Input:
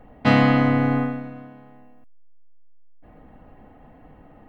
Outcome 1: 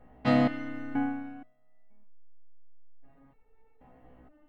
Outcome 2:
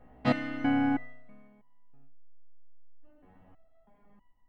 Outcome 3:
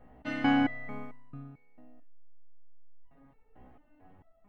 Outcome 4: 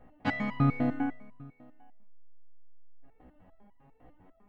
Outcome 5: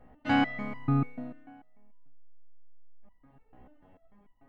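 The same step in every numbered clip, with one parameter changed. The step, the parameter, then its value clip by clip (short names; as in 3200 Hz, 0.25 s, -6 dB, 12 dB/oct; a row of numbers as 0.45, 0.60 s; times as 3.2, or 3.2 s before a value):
stepped resonator, rate: 2.1, 3.1, 4.5, 10, 6.8 Hz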